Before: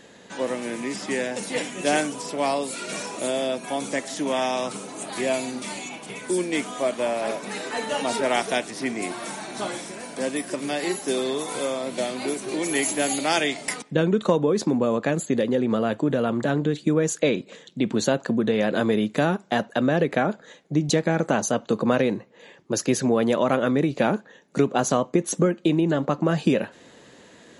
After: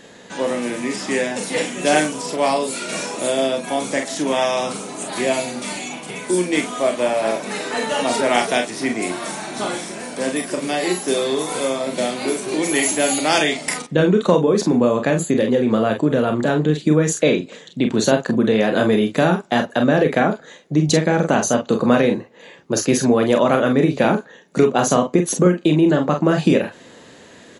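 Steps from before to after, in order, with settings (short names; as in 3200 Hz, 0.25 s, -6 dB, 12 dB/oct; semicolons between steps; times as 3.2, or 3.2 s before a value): early reflections 33 ms -8.5 dB, 45 ms -7.5 dB; gain +4.5 dB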